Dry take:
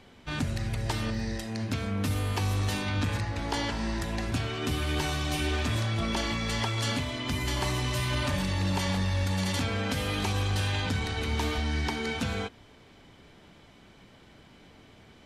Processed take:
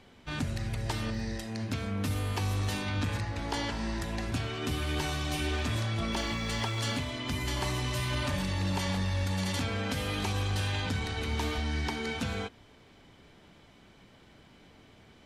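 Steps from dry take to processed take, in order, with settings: 6.11–6.98 added noise pink -56 dBFS; gain -2.5 dB

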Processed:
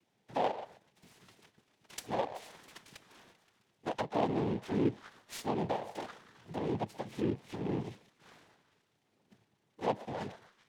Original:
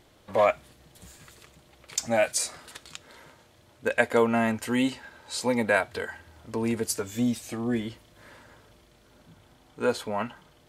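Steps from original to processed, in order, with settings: octaver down 1 oct, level -4 dB; fifteen-band EQ 160 Hz -7 dB, 1000 Hz -12 dB, 6300 Hz -9 dB; gate -54 dBFS, range -9 dB; dynamic EQ 1800 Hz, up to -5 dB, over -43 dBFS, Q 1.1; treble ducked by the level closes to 650 Hz, closed at -22.5 dBFS; delay with a stepping band-pass 0.131 s, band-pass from 820 Hz, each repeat 0.7 oct, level -9.5 dB; noise vocoder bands 6; noise-modulated delay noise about 2000 Hz, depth 0.034 ms; gain -5 dB

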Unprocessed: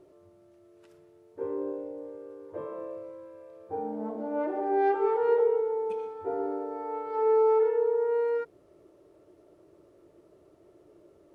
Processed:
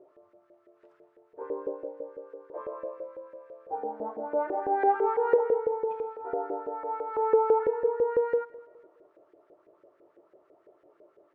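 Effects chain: 2.52–2.98 HPF 220 Hz; LFO band-pass saw up 6 Hz 470–1900 Hz; feedback echo 0.208 s, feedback 35%, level -20 dB; gain +7 dB

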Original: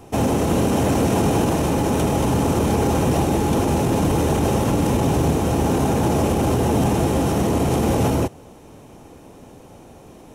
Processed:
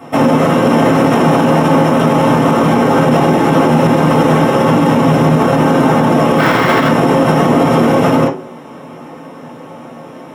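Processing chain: 6.38–6.89 Schmitt trigger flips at -30 dBFS; reverb RT60 0.35 s, pre-delay 3 ms, DRR -3.5 dB; maximiser +1.5 dB; gain -1 dB

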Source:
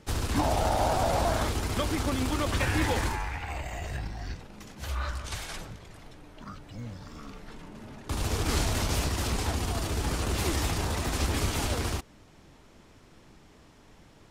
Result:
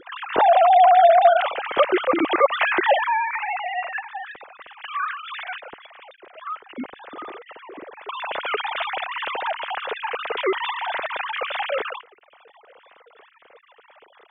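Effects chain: sine-wave speech; gain +7.5 dB

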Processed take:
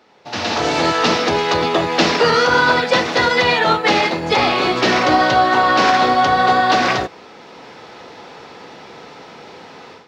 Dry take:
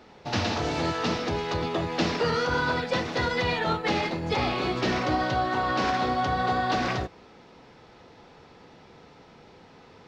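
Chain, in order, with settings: HPF 390 Hz 6 dB/oct; AGC gain up to 16 dB

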